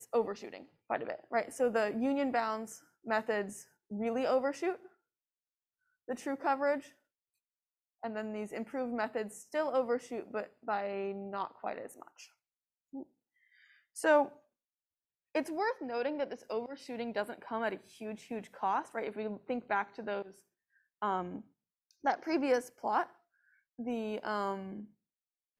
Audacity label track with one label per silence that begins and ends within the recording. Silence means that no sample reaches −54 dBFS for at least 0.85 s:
4.870000	6.080000	silence
6.920000	8.030000	silence
14.390000	15.350000	silence